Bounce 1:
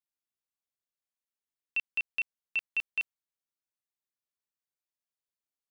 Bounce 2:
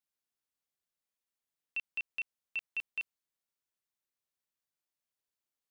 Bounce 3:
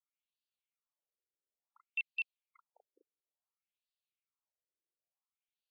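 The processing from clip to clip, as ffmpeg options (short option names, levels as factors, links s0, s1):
-af "alimiter=level_in=2.24:limit=0.0631:level=0:latency=1,volume=0.447,volume=1.12"
-af "asuperstop=centerf=1700:order=20:qfactor=2.5,afftfilt=real='re*between(b*sr/1024,370*pow(3600/370,0.5+0.5*sin(2*PI*0.57*pts/sr))/1.41,370*pow(3600/370,0.5+0.5*sin(2*PI*0.57*pts/sr))*1.41)':imag='im*between(b*sr/1024,370*pow(3600/370,0.5+0.5*sin(2*PI*0.57*pts/sr))/1.41,370*pow(3600/370,0.5+0.5*sin(2*PI*0.57*pts/sr))*1.41)':win_size=1024:overlap=0.75,volume=1.12"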